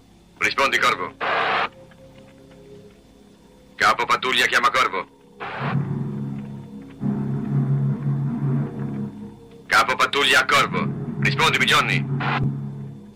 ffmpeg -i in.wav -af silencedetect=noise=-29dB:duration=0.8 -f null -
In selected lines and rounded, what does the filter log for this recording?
silence_start: 1.67
silence_end: 3.79 | silence_duration: 2.12